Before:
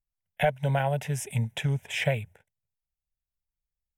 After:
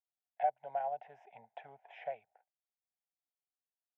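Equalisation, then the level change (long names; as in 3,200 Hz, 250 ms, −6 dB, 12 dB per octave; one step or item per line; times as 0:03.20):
dynamic equaliser 970 Hz, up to −6 dB, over −39 dBFS, Q 0.88
four-pole ladder band-pass 780 Hz, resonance 80%
high-frequency loss of the air 140 metres
0.0 dB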